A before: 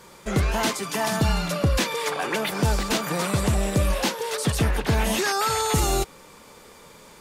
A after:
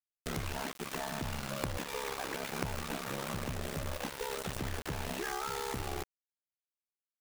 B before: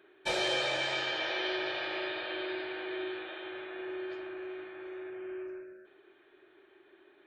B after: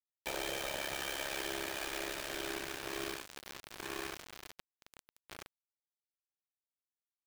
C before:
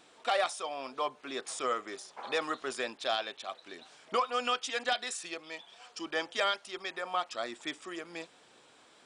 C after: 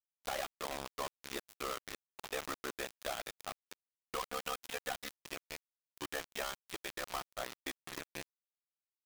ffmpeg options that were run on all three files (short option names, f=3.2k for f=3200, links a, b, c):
-filter_complex "[0:a]acrossover=split=2800[a][b];[b]acompressor=threshold=-39dB:ratio=4:attack=1:release=60[c];[a][c]amix=inputs=2:normalize=0,highshelf=f=7.6k:g=-5.5,bandreject=f=4.7k:w=6.6,acompressor=threshold=-32dB:ratio=8,asoftclip=type=tanh:threshold=-25dB,acrusher=bits=5:mix=0:aa=0.000001,aeval=exprs='0.0668*(cos(1*acos(clip(val(0)/0.0668,-1,1)))-cos(1*PI/2))+0.0133*(cos(2*acos(clip(val(0)/0.0668,-1,1)))-cos(2*PI/2))+0.0168*(cos(3*acos(clip(val(0)/0.0668,-1,1)))-cos(3*PI/2))+0.00596*(cos(4*acos(clip(val(0)/0.0668,-1,1)))-cos(4*PI/2))':c=same,aeval=exprs='val(0)*sin(2*PI*34*n/s)':c=same,volume=5.5dB"